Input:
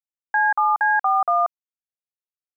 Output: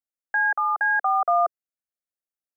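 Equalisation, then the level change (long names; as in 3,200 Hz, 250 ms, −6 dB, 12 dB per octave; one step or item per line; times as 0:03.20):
parametric band 440 Hz +7.5 dB 0.94 octaves
phaser with its sweep stopped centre 630 Hz, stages 8
−1.0 dB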